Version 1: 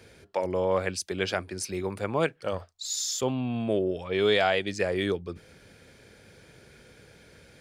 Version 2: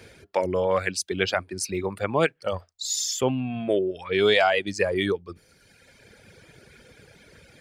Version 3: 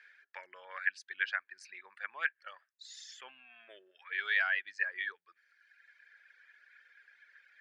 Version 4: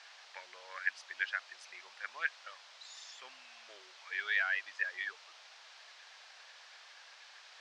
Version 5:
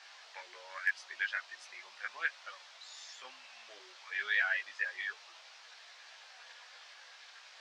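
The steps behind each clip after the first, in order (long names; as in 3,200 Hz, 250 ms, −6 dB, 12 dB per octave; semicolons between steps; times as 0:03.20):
reverb reduction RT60 1.5 s; parametric band 2,200 Hz +2 dB; level +4.5 dB
four-pole ladder band-pass 1,800 Hz, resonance 75%; level −1 dB
noise in a band 600–5,300 Hz −55 dBFS; level −2 dB
hard clipping −19.5 dBFS, distortion −40 dB; multi-voice chorus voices 6, 0.32 Hz, delay 17 ms, depth 3 ms; level +4 dB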